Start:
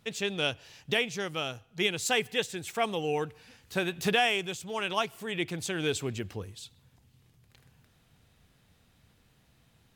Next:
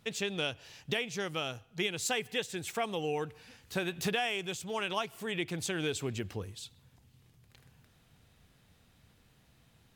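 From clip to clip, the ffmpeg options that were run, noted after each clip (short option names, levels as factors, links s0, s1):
-af "acompressor=threshold=0.0282:ratio=2.5"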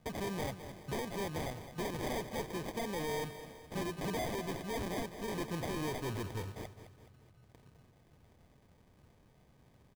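-filter_complex "[0:a]acrusher=samples=32:mix=1:aa=0.000001,asoftclip=type=hard:threshold=0.02,asplit=2[s0][s1];[s1]aecho=0:1:211|422|633|844|1055:0.251|0.118|0.0555|0.0261|0.0123[s2];[s0][s2]amix=inputs=2:normalize=0"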